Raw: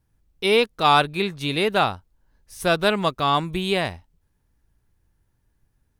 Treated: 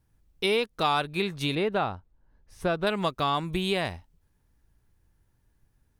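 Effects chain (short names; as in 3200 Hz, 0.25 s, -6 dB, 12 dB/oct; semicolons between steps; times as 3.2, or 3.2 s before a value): 1.55–2.87 LPF 1400 Hz 6 dB/oct; compressor 3:1, threshold -24 dBFS, peak gain reduction 9.5 dB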